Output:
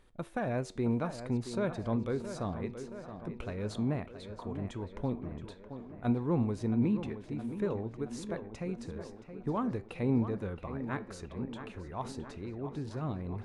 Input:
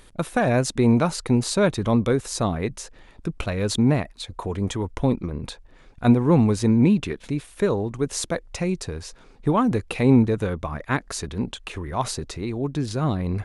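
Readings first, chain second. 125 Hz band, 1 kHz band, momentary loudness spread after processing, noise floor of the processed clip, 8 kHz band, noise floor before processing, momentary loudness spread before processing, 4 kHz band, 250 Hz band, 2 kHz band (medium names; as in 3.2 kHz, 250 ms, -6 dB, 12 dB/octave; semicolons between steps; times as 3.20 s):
-12.5 dB, -12.5 dB, 13 LU, -52 dBFS, -21.5 dB, -50 dBFS, 13 LU, -18.5 dB, -12.0 dB, -14.5 dB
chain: treble shelf 3.3 kHz -10.5 dB; flange 0.61 Hz, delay 7.7 ms, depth 3.4 ms, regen +87%; tape echo 671 ms, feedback 72%, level -9.5 dB, low-pass 3 kHz; trim -8 dB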